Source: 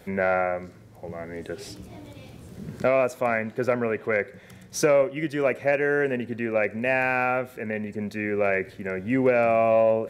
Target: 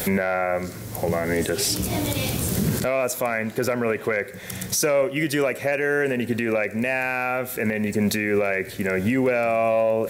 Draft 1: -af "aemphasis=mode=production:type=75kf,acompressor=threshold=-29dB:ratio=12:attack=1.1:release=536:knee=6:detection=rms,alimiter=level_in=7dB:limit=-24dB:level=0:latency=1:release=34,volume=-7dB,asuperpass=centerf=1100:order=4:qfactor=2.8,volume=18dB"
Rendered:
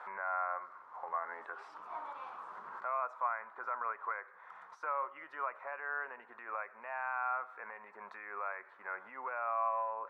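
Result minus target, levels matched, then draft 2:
1000 Hz band +10.0 dB
-af "aemphasis=mode=production:type=75kf,acompressor=threshold=-29dB:ratio=12:attack=1.1:release=536:knee=6:detection=rms,alimiter=level_in=7dB:limit=-24dB:level=0:latency=1:release=34,volume=-7dB,volume=18dB"

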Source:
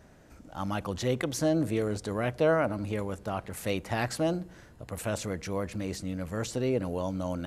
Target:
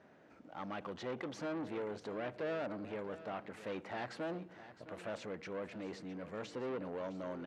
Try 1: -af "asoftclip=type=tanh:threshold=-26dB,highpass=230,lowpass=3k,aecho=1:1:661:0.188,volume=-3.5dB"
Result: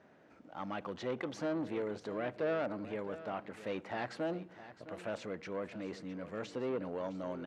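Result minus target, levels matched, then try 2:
soft clip: distortion -5 dB
-af "asoftclip=type=tanh:threshold=-32dB,highpass=230,lowpass=3k,aecho=1:1:661:0.188,volume=-3.5dB"

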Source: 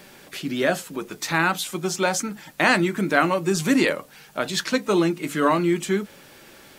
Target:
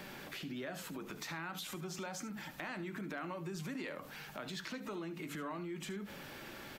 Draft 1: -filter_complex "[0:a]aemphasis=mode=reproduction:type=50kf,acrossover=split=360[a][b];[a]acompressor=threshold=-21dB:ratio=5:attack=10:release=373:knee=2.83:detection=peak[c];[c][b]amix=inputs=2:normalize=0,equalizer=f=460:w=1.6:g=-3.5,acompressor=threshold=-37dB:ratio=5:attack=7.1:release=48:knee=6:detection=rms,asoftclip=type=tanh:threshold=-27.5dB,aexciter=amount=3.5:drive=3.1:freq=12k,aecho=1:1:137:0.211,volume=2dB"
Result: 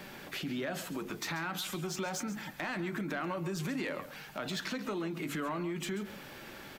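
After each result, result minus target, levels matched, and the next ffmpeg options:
echo 64 ms late; compressor: peak gain reduction -7 dB
-filter_complex "[0:a]aemphasis=mode=reproduction:type=50kf,acrossover=split=360[a][b];[a]acompressor=threshold=-21dB:ratio=5:attack=10:release=373:knee=2.83:detection=peak[c];[c][b]amix=inputs=2:normalize=0,equalizer=f=460:w=1.6:g=-3.5,acompressor=threshold=-37dB:ratio=5:attack=7.1:release=48:knee=6:detection=rms,asoftclip=type=tanh:threshold=-27.5dB,aexciter=amount=3.5:drive=3.1:freq=12k,aecho=1:1:73:0.211,volume=2dB"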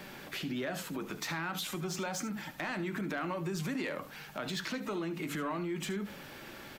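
compressor: peak gain reduction -7 dB
-filter_complex "[0:a]aemphasis=mode=reproduction:type=50kf,acrossover=split=360[a][b];[a]acompressor=threshold=-21dB:ratio=5:attack=10:release=373:knee=2.83:detection=peak[c];[c][b]amix=inputs=2:normalize=0,equalizer=f=460:w=1.6:g=-3.5,acompressor=threshold=-46dB:ratio=5:attack=7.1:release=48:knee=6:detection=rms,asoftclip=type=tanh:threshold=-27.5dB,aexciter=amount=3.5:drive=3.1:freq=12k,aecho=1:1:73:0.211,volume=2dB"

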